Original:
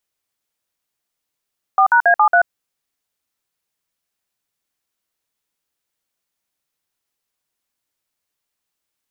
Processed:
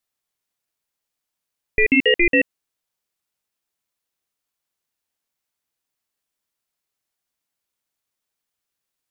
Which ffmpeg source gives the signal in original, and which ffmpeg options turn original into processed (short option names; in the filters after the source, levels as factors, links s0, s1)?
-f lavfi -i "aevalsrc='0.266*clip(min(mod(t,0.138),0.085-mod(t,0.138))/0.002,0,1)*(eq(floor(t/0.138),0)*(sin(2*PI*770*mod(t,0.138))+sin(2*PI*1209*mod(t,0.138)))+eq(floor(t/0.138),1)*(sin(2*PI*941*mod(t,0.138))+sin(2*PI*1477*mod(t,0.138)))+eq(floor(t/0.138),2)*(sin(2*PI*697*mod(t,0.138))+sin(2*PI*1633*mod(t,0.138)))+eq(floor(t/0.138),3)*(sin(2*PI*852*mod(t,0.138))+sin(2*PI*1209*mod(t,0.138)))+eq(floor(t/0.138),4)*(sin(2*PI*697*mod(t,0.138))+sin(2*PI*1477*mod(t,0.138))))':d=0.69:s=44100"
-af "aeval=exprs='val(0)*sin(2*PI*1200*n/s)':c=same"